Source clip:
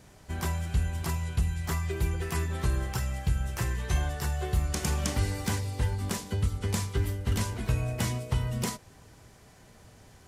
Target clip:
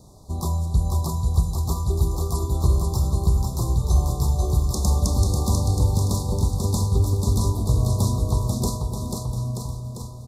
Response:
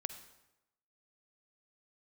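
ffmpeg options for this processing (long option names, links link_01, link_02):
-filter_complex "[0:a]asuperstop=centerf=2100:order=20:qfactor=0.86,aecho=1:1:490|931|1328|1685|2007:0.631|0.398|0.251|0.158|0.1,asplit=2[link_01][link_02];[1:a]atrim=start_sample=2205,asetrate=31752,aresample=44100,lowshelf=frequency=260:gain=7.5[link_03];[link_02][link_03]afir=irnorm=-1:irlink=0,volume=-5.5dB[link_04];[link_01][link_04]amix=inputs=2:normalize=0"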